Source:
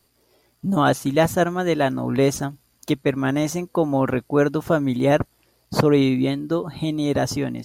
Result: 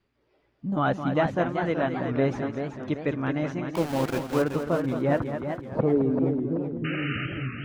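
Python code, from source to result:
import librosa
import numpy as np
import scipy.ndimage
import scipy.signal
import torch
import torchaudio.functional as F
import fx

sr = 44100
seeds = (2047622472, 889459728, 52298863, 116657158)

y = fx.spec_quant(x, sr, step_db=15)
y = fx.filter_sweep_lowpass(y, sr, from_hz=2400.0, to_hz=160.0, start_s=4.88, end_s=7.22, q=1.0)
y = fx.sample_gate(y, sr, floor_db=-23.0, at=(3.7, 4.42))
y = fx.spec_paint(y, sr, seeds[0], shape='noise', start_s=6.84, length_s=0.42, low_hz=1200.0, high_hz=3000.0, level_db=-28.0)
y = y + 10.0 ** (-9.0 / 20.0) * np.pad(y, (int(214 * sr / 1000.0), 0))[:len(y)]
y = fx.echo_warbled(y, sr, ms=381, feedback_pct=47, rate_hz=2.8, cents=140, wet_db=-8.0)
y = y * librosa.db_to_amplitude(-6.5)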